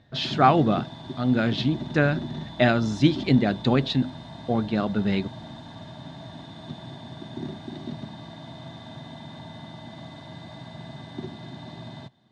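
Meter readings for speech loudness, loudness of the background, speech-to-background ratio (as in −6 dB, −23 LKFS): −23.5 LKFS, −38.0 LKFS, 14.5 dB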